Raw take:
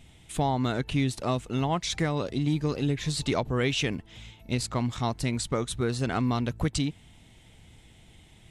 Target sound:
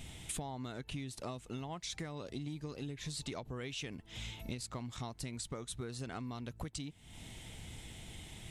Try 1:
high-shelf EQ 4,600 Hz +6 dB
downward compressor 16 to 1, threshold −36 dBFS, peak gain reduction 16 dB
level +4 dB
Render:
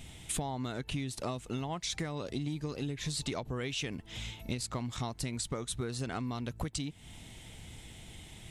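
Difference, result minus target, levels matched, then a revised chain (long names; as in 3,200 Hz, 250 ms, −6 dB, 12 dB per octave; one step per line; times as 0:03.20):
downward compressor: peak gain reduction −6 dB
high-shelf EQ 4,600 Hz +6 dB
downward compressor 16 to 1, threshold −42.5 dBFS, peak gain reduction 22 dB
level +4 dB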